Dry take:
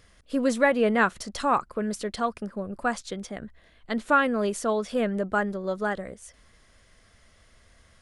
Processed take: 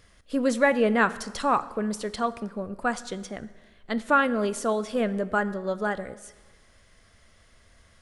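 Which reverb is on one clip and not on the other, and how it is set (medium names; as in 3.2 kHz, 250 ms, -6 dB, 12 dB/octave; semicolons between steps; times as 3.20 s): plate-style reverb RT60 1.3 s, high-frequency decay 0.8×, DRR 14.5 dB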